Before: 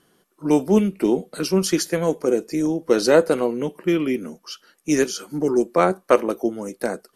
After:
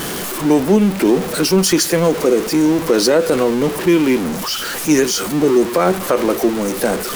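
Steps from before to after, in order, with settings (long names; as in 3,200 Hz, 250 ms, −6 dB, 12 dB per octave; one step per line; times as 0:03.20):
converter with a step at zero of −23.5 dBFS
boost into a limiter +9 dB
level −3.5 dB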